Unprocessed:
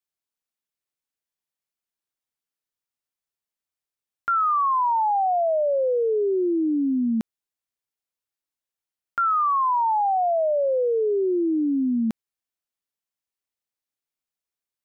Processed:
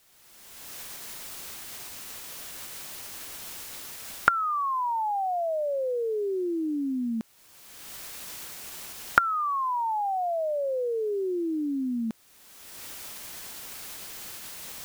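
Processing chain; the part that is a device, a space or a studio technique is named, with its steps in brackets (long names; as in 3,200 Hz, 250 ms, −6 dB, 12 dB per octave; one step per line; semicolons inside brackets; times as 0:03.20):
cheap recorder with automatic gain (white noise bed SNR 31 dB; camcorder AGC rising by 30 dB per second)
level −6.5 dB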